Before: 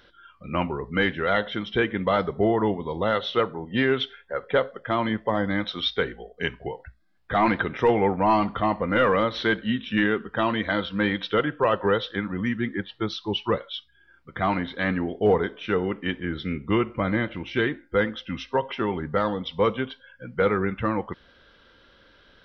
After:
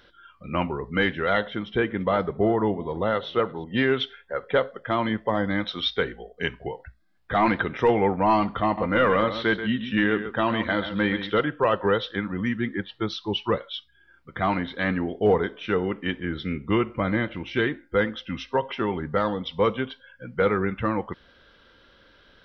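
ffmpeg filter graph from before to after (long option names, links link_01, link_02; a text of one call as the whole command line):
ffmpeg -i in.wav -filter_complex "[0:a]asettb=1/sr,asplit=3[link_01][link_02][link_03];[link_01]atrim=end=1.474[link_04];[link_02]atrim=start=1.47:end=3.64,asetpts=PTS-STARTPTS,afade=type=in:duration=0.004:curve=qsin,afade=type=out:start_time=2.166:duration=0.004:curve=qsin,highshelf=frequency=2900:gain=-9.5,aecho=1:1:341:0.0794,atrim=end_sample=95697[link_05];[link_03]atrim=start=3.636[link_06];[link_04][link_05]acrossfade=duration=0.004:curve1=hsin:curve2=qsin[link_07];[link_07][link_06]acrossfade=duration=0.004:curve1=qsin:curve2=hsin,asettb=1/sr,asplit=3[link_08][link_09][link_10];[link_08]atrim=end=8.644[link_11];[link_09]atrim=start=8.64:end=11.44,asetpts=PTS-STARTPTS,afade=type=in:duration=0.004:curve=qsin,afade=type=out:start_time=2.796:duration=0.004:curve=qsin,acrossover=split=4000[link_12][link_13];[link_13]acompressor=threshold=-47dB:ratio=4:attack=1:release=60[link_14];[link_12][link_14]amix=inputs=2:normalize=0,aecho=1:1:133:0.299,atrim=end_sample=123480[link_15];[link_10]atrim=start=11.436[link_16];[link_11][link_15]acrossfade=duration=0.004:curve1=hsin:curve2=qsin[link_17];[link_17][link_16]acrossfade=duration=0.004:curve1=qsin:curve2=hsin" out.wav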